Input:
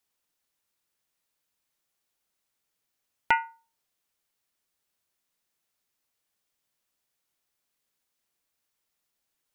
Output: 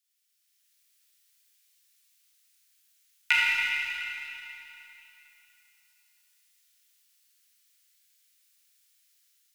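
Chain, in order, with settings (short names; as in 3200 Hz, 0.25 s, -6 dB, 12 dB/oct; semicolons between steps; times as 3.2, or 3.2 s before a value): rattling part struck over -49 dBFS, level -15 dBFS; Bessel high-pass 2500 Hz, order 6; AGC gain up to 7 dB; in parallel at -10 dB: Schmitt trigger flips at -31.5 dBFS; on the sum: Schroeder reverb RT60 3.1 s, combs from 27 ms, DRR -6.5 dB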